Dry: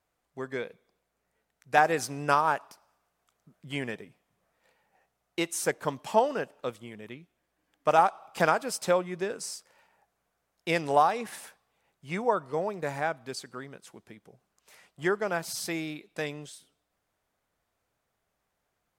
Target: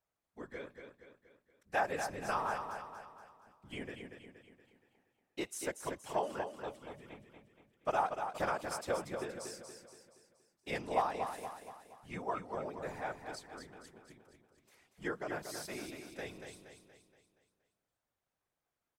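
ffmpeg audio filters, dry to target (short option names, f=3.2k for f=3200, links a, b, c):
-af "afftfilt=real='hypot(re,im)*cos(2*PI*random(0))':imag='hypot(re,im)*sin(2*PI*random(1))':win_size=512:overlap=0.75,aecho=1:1:236|472|708|944|1180|1416:0.447|0.21|0.0987|0.0464|0.0218|0.0102,volume=-5dB"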